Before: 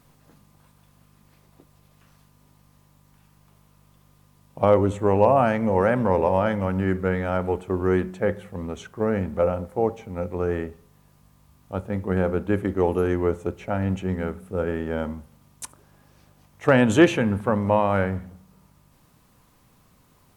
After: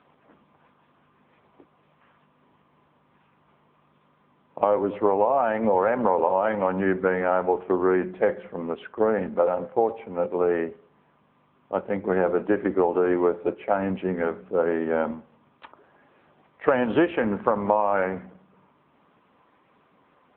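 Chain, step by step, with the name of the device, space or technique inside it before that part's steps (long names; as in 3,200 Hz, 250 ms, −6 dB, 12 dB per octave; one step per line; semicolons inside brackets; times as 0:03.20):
0:07.22–0:07.69: low-pass filter 3,000 Hz 12 dB per octave
dynamic equaliser 870 Hz, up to +4 dB, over −32 dBFS, Q 1.3
voicemail (band-pass filter 300–2,600 Hz; downward compressor 10 to 1, threshold −22 dBFS, peak gain reduction 12 dB; level +6 dB; AMR narrowband 6.7 kbit/s 8,000 Hz)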